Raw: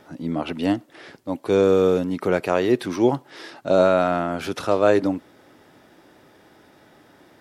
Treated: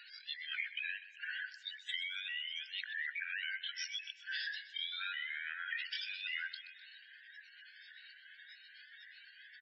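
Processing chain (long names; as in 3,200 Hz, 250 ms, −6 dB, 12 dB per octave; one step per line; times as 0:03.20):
pitch shifter swept by a sawtooth +5 semitones, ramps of 439 ms
de-essing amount 85%
Butterworth high-pass 2,000 Hz 96 dB per octave
gate on every frequency bin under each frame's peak −10 dB strong
noise reduction from a noise print of the clip's start 9 dB
downward compressor 6 to 1, threshold −56 dBFS, peak gain reduction 17.5 dB
speed change −23%
on a send: repeating echo 126 ms, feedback 54%, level −15 dB
on the sum: downsampling to 16,000 Hz
level +17 dB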